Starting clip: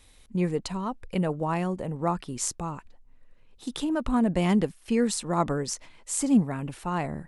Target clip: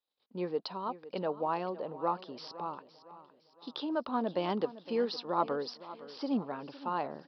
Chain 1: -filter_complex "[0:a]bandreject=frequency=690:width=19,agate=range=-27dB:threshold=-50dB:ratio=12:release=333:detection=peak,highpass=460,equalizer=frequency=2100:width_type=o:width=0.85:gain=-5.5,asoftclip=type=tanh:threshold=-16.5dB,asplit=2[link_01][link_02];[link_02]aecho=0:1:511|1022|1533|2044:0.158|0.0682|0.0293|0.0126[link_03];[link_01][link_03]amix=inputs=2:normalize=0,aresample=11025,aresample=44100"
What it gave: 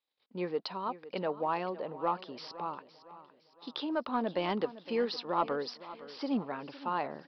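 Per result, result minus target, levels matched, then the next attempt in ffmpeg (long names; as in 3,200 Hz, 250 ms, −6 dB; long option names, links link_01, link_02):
soft clipping: distortion +20 dB; 2,000 Hz band +4.0 dB
-filter_complex "[0:a]bandreject=frequency=690:width=19,agate=range=-27dB:threshold=-50dB:ratio=12:release=333:detection=peak,highpass=460,equalizer=frequency=2100:width_type=o:width=0.85:gain=-5.5,asoftclip=type=tanh:threshold=-6dB,asplit=2[link_01][link_02];[link_02]aecho=0:1:511|1022|1533|2044:0.158|0.0682|0.0293|0.0126[link_03];[link_01][link_03]amix=inputs=2:normalize=0,aresample=11025,aresample=44100"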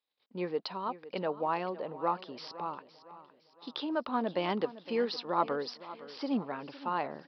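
2,000 Hz band +4.0 dB
-filter_complex "[0:a]bandreject=frequency=690:width=19,agate=range=-27dB:threshold=-50dB:ratio=12:release=333:detection=peak,highpass=460,equalizer=frequency=2100:width_type=o:width=0.85:gain=-13,asoftclip=type=tanh:threshold=-6dB,asplit=2[link_01][link_02];[link_02]aecho=0:1:511|1022|1533|2044:0.158|0.0682|0.0293|0.0126[link_03];[link_01][link_03]amix=inputs=2:normalize=0,aresample=11025,aresample=44100"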